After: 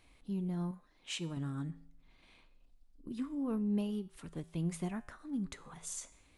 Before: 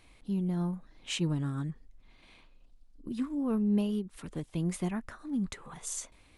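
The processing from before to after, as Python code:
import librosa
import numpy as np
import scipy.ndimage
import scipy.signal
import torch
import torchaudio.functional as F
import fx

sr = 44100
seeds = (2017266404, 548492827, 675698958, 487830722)

y = fx.comb_fb(x, sr, f0_hz=55.0, decay_s=0.64, harmonics='odd', damping=0.0, mix_pct=50)
y = fx.low_shelf(y, sr, hz=240.0, db=-10.0, at=(0.71, 1.37))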